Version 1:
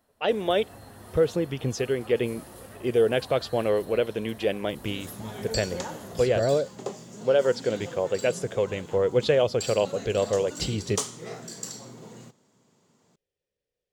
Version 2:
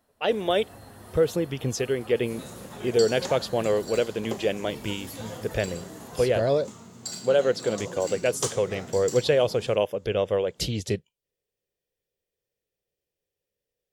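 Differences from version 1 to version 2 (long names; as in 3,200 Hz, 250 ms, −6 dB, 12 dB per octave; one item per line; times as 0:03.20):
speech: remove high-frequency loss of the air 57 metres
second sound: entry −2.55 s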